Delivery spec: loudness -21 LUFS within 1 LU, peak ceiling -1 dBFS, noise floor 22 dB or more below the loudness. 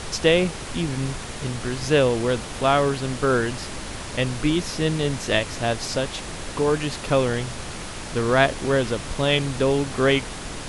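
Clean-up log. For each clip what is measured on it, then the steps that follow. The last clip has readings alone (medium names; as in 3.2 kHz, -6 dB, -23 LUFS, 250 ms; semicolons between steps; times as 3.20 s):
noise floor -34 dBFS; noise floor target -46 dBFS; loudness -23.5 LUFS; peak level -3.5 dBFS; loudness target -21.0 LUFS
-> noise print and reduce 12 dB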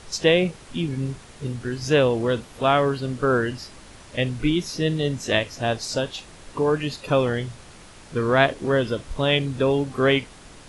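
noise floor -46 dBFS; loudness -23.0 LUFS; peak level -3.5 dBFS; loudness target -21.0 LUFS
-> trim +2 dB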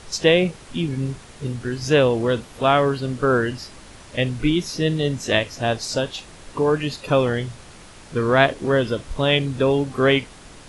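loudness -21.0 LUFS; peak level -1.5 dBFS; noise floor -44 dBFS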